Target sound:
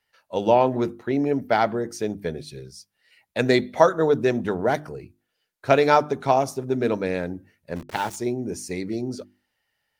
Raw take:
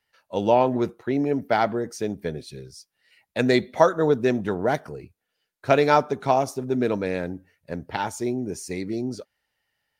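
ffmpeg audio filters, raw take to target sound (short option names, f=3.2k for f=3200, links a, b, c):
-filter_complex "[0:a]asplit=3[a][b][c];[a]afade=t=out:st=7.75:d=0.02[d];[b]aeval=exprs='val(0)*gte(abs(val(0)),0.0168)':c=same,afade=t=in:st=7.75:d=0.02,afade=t=out:st=8.15:d=0.02[e];[c]afade=t=in:st=8.15:d=0.02[f];[d][e][f]amix=inputs=3:normalize=0,bandreject=f=50:t=h:w=6,bandreject=f=100:t=h:w=6,bandreject=f=150:t=h:w=6,bandreject=f=200:t=h:w=6,bandreject=f=250:t=h:w=6,bandreject=f=300:t=h:w=6,bandreject=f=350:t=h:w=6,volume=1dB"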